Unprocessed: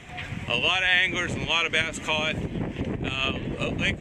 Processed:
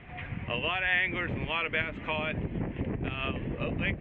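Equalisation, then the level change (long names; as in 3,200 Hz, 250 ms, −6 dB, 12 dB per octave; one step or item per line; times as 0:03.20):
low-pass filter 2,600 Hz 24 dB per octave
low-shelf EQ 93 Hz +5 dB
−4.5 dB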